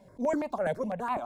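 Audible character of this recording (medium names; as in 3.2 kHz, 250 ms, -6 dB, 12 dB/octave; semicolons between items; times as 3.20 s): notches that jump at a steady rate 12 Hz 320–1600 Hz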